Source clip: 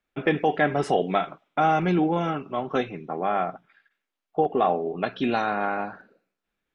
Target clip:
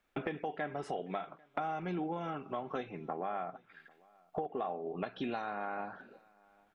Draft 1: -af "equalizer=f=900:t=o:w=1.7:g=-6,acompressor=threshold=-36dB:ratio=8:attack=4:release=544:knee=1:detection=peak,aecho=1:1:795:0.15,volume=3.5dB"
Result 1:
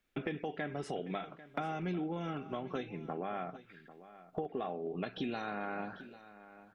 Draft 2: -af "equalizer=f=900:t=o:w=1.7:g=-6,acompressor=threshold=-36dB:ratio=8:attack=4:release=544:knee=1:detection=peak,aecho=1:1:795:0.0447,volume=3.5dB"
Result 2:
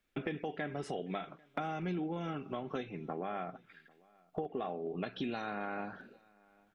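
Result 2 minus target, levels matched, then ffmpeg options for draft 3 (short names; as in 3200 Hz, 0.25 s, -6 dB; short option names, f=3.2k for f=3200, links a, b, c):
1000 Hz band -3.0 dB
-af "equalizer=f=900:t=o:w=1.7:g=3.5,acompressor=threshold=-36dB:ratio=8:attack=4:release=544:knee=1:detection=peak,aecho=1:1:795:0.0447,volume=3.5dB"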